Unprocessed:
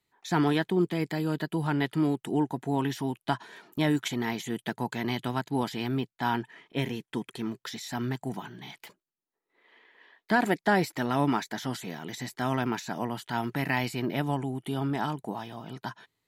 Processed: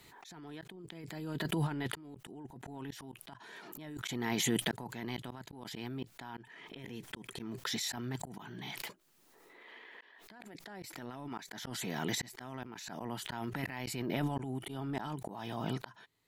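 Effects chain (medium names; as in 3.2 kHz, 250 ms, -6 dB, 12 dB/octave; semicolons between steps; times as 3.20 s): compressor with a negative ratio -32 dBFS, ratio -0.5; slow attack 546 ms; swell ahead of each attack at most 27 dB/s; trim +1 dB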